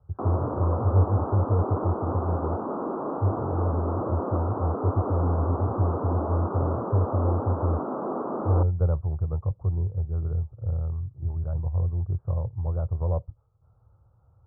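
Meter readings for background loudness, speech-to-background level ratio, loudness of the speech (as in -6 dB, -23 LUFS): -31.0 LUFS, 3.0 dB, -28.0 LUFS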